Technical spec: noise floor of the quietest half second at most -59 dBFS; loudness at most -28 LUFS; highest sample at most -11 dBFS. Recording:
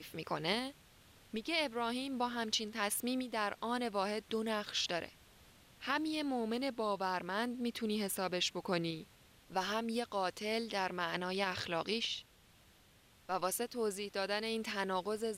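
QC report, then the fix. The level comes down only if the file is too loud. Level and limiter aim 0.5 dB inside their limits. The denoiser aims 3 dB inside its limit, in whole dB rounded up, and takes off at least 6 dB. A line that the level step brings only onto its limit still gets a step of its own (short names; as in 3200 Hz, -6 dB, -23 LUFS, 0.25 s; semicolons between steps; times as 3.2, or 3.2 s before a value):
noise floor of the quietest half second -65 dBFS: OK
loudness -37.0 LUFS: OK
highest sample -20.5 dBFS: OK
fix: none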